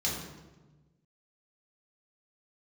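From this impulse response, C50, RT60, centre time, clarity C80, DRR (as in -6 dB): 2.5 dB, 1.2 s, 57 ms, 5.0 dB, -5.0 dB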